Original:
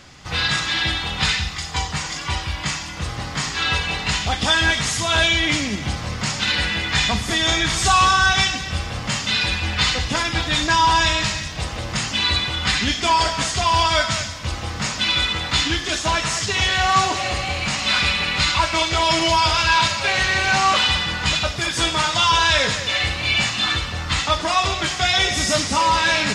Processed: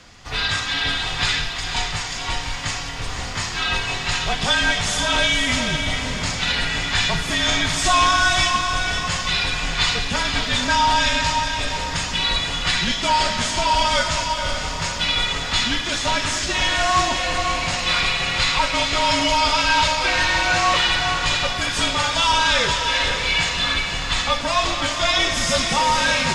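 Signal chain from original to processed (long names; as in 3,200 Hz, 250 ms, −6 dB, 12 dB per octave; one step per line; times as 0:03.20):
frequency shifter −46 Hz
feedback delay with all-pass diffusion 516 ms, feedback 41%, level −5.5 dB
level −1.5 dB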